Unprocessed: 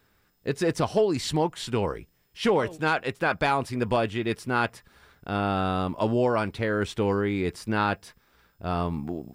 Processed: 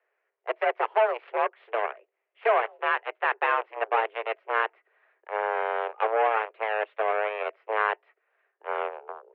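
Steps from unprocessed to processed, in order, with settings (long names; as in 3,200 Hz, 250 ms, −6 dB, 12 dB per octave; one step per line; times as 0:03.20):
harmonic generator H 7 −14 dB, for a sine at −12.5 dBFS
single-sideband voice off tune +220 Hz 190–2,400 Hz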